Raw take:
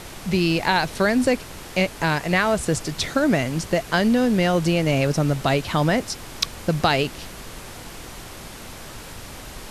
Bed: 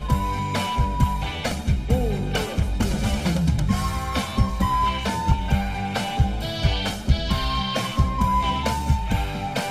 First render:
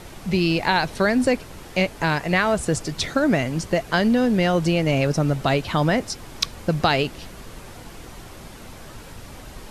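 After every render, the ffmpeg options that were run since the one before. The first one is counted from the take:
ffmpeg -i in.wav -af "afftdn=noise_reduction=6:noise_floor=-39" out.wav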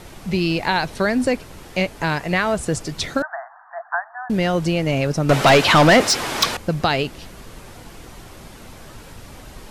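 ffmpeg -i in.wav -filter_complex "[0:a]asettb=1/sr,asplit=3[link_01][link_02][link_03];[link_01]atrim=end=3.224[link_04];[link_02]atrim=start=3.22:end=4.3,asetpts=PTS-STARTPTS,afade=type=in:duration=0.004:curve=qsin,afade=type=out:start_time=1.076:duration=0.004:curve=qsin,asuperpass=centerf=1100:order=20:qfactor=1[link_05];[link_03]atrim=start=4.296[link_06];[link_04][link_05]acrossfade=duration=0.004:curve1=hsin:curve2=qsin[link_07];[link_07][link_06]acrossfade=duration=0.004:curve1=qsin:curve2=hsin,asettb=1/sr,asplit=3[link_08][link_09][link_10];[link_08]atrim=end=5.294[link_11];[link_09]atrim=start=5.29:end=6.57,asetpts=PTS-STARTPTS,afade=type=in:duration=0.004:curve=qsin,afade=type=out:start_time=1.276:duration=0.004:curve=qsin,asplit=2[link_12][link_13];[link_13]highpass=frequency=720:poles=1,volume=27dB,asoftclip=type=tanh:threshold=-3.5dB[link_14];[link_12][link_14]amix=inputs=2:normalize=0,lowpass=frequency=4800:poles=1,volume=-6dB[link_15];[link_10]atrim=start=6.566[link_16];[link_11][link_15]acrossfade=duration=0.004:curve1=hsin:curve2=qsin[link_17];[link_17][link_16]acrossfade=duration=0.004:curve1=qsin:curve2=hsin" out.wav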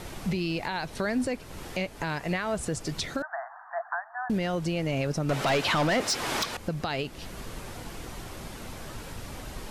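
ffmpeg -i in.wav -af "acompressor=threshold=-28dB:ratio=1.5,alimiter=limit=-19.5dB:level=0:latency=1:release=377" out.wav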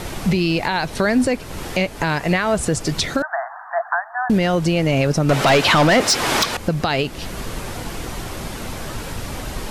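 ffmpeg -i in.wav -af "volume=11dB" out.wav

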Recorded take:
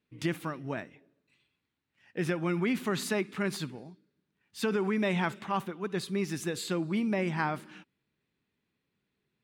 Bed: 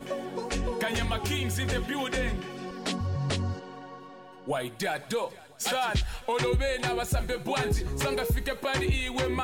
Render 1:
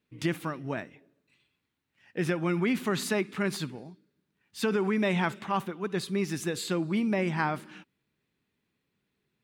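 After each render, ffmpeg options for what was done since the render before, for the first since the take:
ffmpeg -i in.wav -af "volume=2dB" out.wav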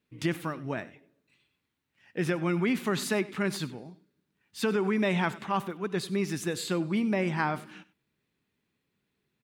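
ffmpeg -i in.wav -af "aecho=1:1:97:0.112" out.wav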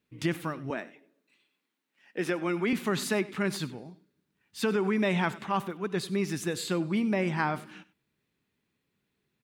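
ffmpeg -i in.wav -filter_complex "[0:a]asettb=1/sr,asplit=3[link_01][link_02][link_03];[link_01]atrim=end=0.704[link_04];[link_02]atrim=start=0.7:end=2.73,asetpts=PTS-STARTPTS,afade=type=in:duration=0.004:curve=qsin,afade=type=out:start_time=2.026:duration=0.004:curve=qsin,highpass=frequency=210:width=0.5412,highpass=frequency=210:width=1.3066[link_05];[link_03]atrim=start=2.726[link_06];[link_04][link_05]acrossfade=duration=0.004:curve1=hsin:curve2=qsin[link_07];[link_07][link_06]acrossfade=duration=0.004:curve1=qsin:curve2=hsin" out.wav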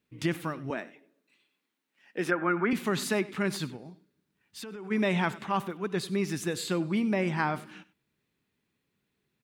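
ffmpeg -i in.wav -filter_complex "[0:a]asplit=3[link_01][link_02][link_03];[link_01]afade=type=out:start_time=2.3:duration=0.02[link_04];[link_02]lowpass=frequency=1500:width_type=q:width=3.4,afade=type=in:start_time=2.3:duration=0.02,afade=type=out:start_time=2.7:duration=0.02[link_05];[link_03]afade=type=in:start_time=2.7:duration=0.02[link_06];[link_04][link_05][link_06]amix=inputs=3:normalize=0,asplit=3[link_07][link_08][link_09];[link_07]afade=type=out:start_time=3.76:duration=0.02[link_10];[link_08]acompressor=threshold=-39dB:ratio=6:attack=3.2:release=140:knee=1:detection=peak,afade=type=in:start_time=3.76:duration=0.02,afade=type=out:start_time=4.9:duration=0.02[link_11];[link_09]afade=type=in:start_time=4.9:duration=0.02[link_12];[link_10][link_11][link_12]amix=inputs=3:normalize=0" out.wav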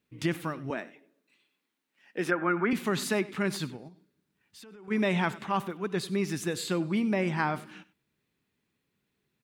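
ffmpeg -i in.wav -filter_complex "[0:a]asettb=1/sr,asplit=3[link_01][link_02][link_03];[link_01]atrim=end=3.884[link_04];[link_02]atrim=start=3.88:end=4.88,asetpts=PTS-STARTPTS,afade=type=in:duration=0.004:curve=qsin,afade=type=out:start_time=0.996:duration=0.004:curve=qsin,acompressor=threshold=-53dB:ratio=2:attack=3.2:release=140:knee=1:detection=peak[link_05];[link_03]atrim=start=4.876[link_06];[link_04][link_05]acrossfade=duration=0.004:curve1=hsin:curve2=qsin[link_07];[link_07][link_06]acrossfade=duration=0.004:curve1=qsin:curve2=hsin" out.wav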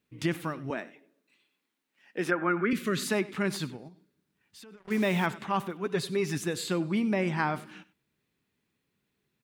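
ffmpeg -i in.wav -filter_complex "[0:a]asettb=1/sr,asplit=3[link_01][link_02][link_03];[link_01]atrim=end=2.614[link_04];[link_02]atrim=start=2.61:end=3.08,asetpts=PTS-STARTPTS,afade=type=in:duration=0.004:curve=qsin,afade=type=out:start_time=0.466:duration=0.004:curve=qsin,asuperstop=centerf=830:order=4:qfactor=1.5[link_05];[link_03]atrim=start=3.076[link_06];[link_04][link_05]acrossfade=duration=0.004:curve1=hsin:curve2=qsin[link_07];[link_07][link_06]acrossfade=duration=0.004:curve1=qsin:curve2=hsin,asplit=3[link_08][link_09][link_10];[link_08]afade=type=out:start_time=4.76:duration=0.02[link_11];[link_09]acrusher=bits=6:mix=0:aa=0.5,afade=type=in:start_time=4.76:duration=0.02,afade=type=out:start_time=5.25:duration=0.02[link_12];[link_10]afade=type=in:start_time=5.25:duration=0.02[link_13];[link_11][link_12][link_13]amix=inputs=3:normalize=0,asettb=1/sr,asplit=3[link_14][link_15][link_16];[link_14]atrim=end=5.854[link_17];[link_15]atrim=start=5.85:end=6.38,asetpts=PTS-STARTPTS,afade=type=in:duration=0.004:curve=qsin,afade=type=out:start_time=0.526:duration=0.004:curve=qsin,aecho=1:1:7.3:0.57,atrim=end_sample=23373[link_18];[link_16]atrim=start=6.376[link_19];[link_17][link_18]acrossfade=duration=0.004:curve1=hsin:curve2=qsin[link_20];[link_20][link_19]acrossfade=duration=0.004:curve1=qsin:curve2=hsin" out.wav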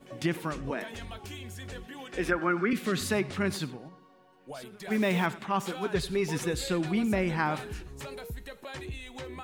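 ffmpeg -i in.wav -i bed.wav -filter_complex "[1:a]volume=-12.5dB[link_01];[0:a][link_01]amix=inputs=2:normalize=0" out.wav

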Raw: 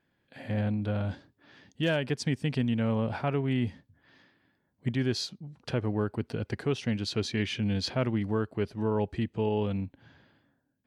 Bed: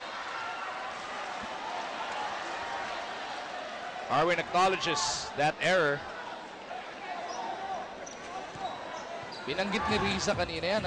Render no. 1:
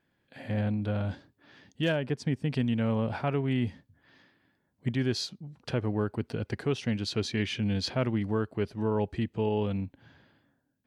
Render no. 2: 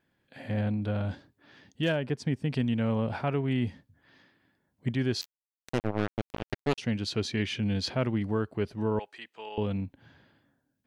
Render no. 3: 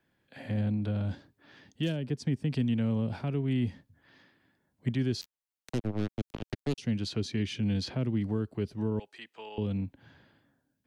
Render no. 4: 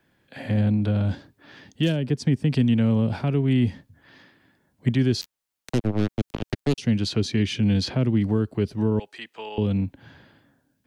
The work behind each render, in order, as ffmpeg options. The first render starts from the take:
ffmpeg -i in.wav -filter_complex "[0:a]asettb=1/sr,asplit=3[link_01][link_02][link_03];[link_01]atrim=end=1.924[link_04];[link_02]atrim=start=1.92:end=2.52,asetpts=PTS-STARTPTS,afade=type=in:duration=0.004:curve=qsin,afade=type=out:start_time=0.596:duration=0.004:curve=qsin,highshelf=frequency=2000:gain=-9[link_05];[link_03]atrim=start=2.516[link_06];[link_04][link_05]acrossfade=duration=0.004:curve1=hsin:curve2=qsin[link_07];[link_07][link_06]acrossfade=duration=0.004:curve1=qsin:curve2=hsin" out.wav
ffmpeg -i in.wav -filter_complex "[0:a]asettb=1/sr,asplit=3[link_01][link_02][link_03];[link_01]atrim=end=5.214[link_04];[link_02]atrim=start=5.21:end=6.78,asetpts=PTS-STARTPTS,afade=type=in:duration=0.004:curve=qsin,afade=type=out:start_time=1.566:duration=0.004:curve=qsin,acrusher=bits=3:mix=0:aa=0.5[link_05];[link_03]atrim=start=6.776[link_06];[link_04][link_05]acrossfade=duration=0.004:curve1=hsin:curve2=qsin[link_07];[link_07][link_06]acrossfade=duration=0.004:curve1=qsin:curve2=hsin,asettb=1/sr,asplit=3[link_08][link_09][link_10];[link_08]atrim=end=8.994[link_11];[link_09]atrim=start=8.99:end=9.58,asetpts=PTS-STARTPTS,afade=type=in:duration=0.004:curve=qsin,afade=type=out:start_time=0.586:duration=0.004:curve=qsin,highpass=1000[link_12];[link_10]atrim=start=9.576[link_13];[link_11][link_12]acrossfade=duration=0.004:curve1=hsin:curve2=qsin[link_14];[link_14][link_13]acrossfade=duration=0.004:curve1=qsin:curve2=hsin" out.wav
ffmpeg -i in.wav -filter_complex "[0:a]acrossover=split=230|370|3300[link_01][link_02][link_03][link_04];[link_03]acompressor=threshold=-44dB:ratio=6[link_05];[link_04]alimiter=level_in=6dB:limit=-24dB:level=0:latency=1:release=336,volume=-6dB[link_06];[link_01][link_02][link_05][link_06]amix=inputs=4:normalize=0" out.wav
ffmpeg -i in.wav -af "volume=8.5dB" out.wav

